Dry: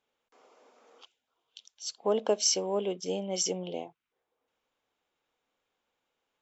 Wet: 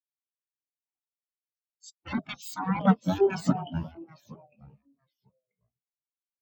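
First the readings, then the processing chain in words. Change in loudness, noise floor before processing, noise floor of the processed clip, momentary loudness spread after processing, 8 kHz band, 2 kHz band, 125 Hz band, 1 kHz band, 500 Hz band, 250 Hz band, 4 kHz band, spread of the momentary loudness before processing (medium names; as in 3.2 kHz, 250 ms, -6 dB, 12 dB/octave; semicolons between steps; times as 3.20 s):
+2.5 dB, -85 dBFS, under -85 dBFS, 13 LU, no reading, +10.5 dB, +14.5 dB, +7.0 dB, 0.0 dB, +10.5 dB, -11.0 dB, 14 LU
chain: rattle on loud lows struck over -37 dBFS, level -25 dBFS; in parallel at -5 dB: sine folder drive 19 dB, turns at -12 dBFS; on the sum: spectral gate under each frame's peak -10 dB weak; high-pass 68 Hz 6 dB/octave; tone controls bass +6 dB, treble +3 dB; hum notches 50/100/150 Hz; on a send: echo whose repeats swap between lows and highs 176 ms, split 1.9 kHz, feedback 80%, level -13 dB; on the sum: ever faster or slower copies 160 ms, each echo -3 st, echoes 2, each echo -6 dB; spectral contrast expander 4:1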